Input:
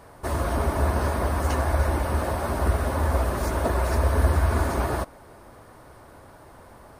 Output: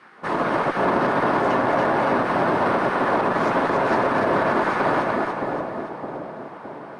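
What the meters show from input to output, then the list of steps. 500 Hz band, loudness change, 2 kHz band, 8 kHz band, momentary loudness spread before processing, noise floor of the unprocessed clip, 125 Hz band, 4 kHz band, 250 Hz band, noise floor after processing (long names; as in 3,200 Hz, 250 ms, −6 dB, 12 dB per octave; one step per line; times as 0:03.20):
+7.0 dB, +3.5 dB, +9.0 dB, below −10 dB, 5 LU, −49 dBFS, −9.0 dB, +3.5 dB, +7.0 dB, −39 dBFS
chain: on a send: echo with a time of its own for lows and highs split 790 Hz, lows 614 ms, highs 285 ms, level −4 dB
on the sum: gate on every frequency bin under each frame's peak −10 dB weak
band-pass filter 160–2,600 Hz
brickwall limiter −20 dBFS, peak gain reduction 5.5 dB
harmonic generator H 4 −25 dB, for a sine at −20 dBFS
level +9 dB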